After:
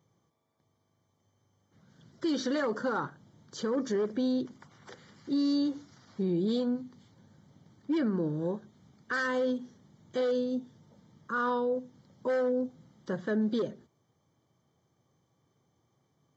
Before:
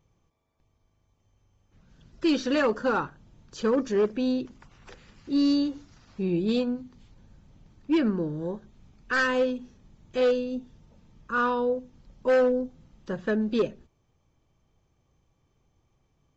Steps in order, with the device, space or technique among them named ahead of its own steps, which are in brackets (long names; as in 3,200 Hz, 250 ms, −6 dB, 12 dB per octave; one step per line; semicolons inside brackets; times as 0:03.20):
PA system with an anti-feedback notch (high-pass filter 110 Hz 24 dB per octave; Butterworth band-reject 2,600 Hz, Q 3.6; brickwall limiter −22.5 dBFS, peak gain reduction 8.5 dB)